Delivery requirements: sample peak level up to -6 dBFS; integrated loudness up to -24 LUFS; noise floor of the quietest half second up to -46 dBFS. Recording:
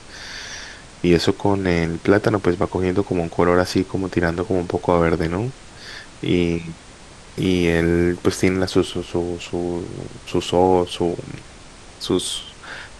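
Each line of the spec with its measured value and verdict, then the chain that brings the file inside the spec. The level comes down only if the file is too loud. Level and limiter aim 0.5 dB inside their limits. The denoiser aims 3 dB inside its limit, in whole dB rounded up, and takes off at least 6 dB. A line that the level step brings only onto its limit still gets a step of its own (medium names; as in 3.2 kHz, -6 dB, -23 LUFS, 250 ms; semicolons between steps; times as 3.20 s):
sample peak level -2.0 dBFS: fail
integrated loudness -20.5 LUFS: fail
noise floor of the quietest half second -42 dBFS: fail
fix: noise reduction 6 dB, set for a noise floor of -42 dBFS; trim -4 dB; peak limiter -6.5 dBFS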